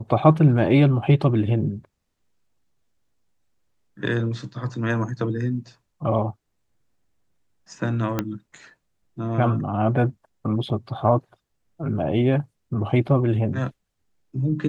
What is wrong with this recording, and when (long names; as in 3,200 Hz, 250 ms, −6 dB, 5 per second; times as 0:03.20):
0:08.19: click −9 dBFS